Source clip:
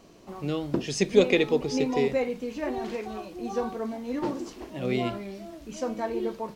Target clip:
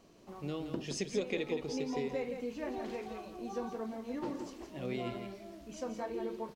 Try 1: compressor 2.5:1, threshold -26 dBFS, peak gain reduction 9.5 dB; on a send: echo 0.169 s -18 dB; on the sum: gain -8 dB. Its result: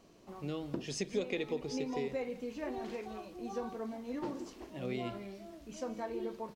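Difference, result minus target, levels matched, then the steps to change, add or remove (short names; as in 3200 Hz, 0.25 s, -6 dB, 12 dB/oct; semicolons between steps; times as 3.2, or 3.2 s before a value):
echo-to-direct -10.5 dB
change: echo 0.169 s -7.5 dB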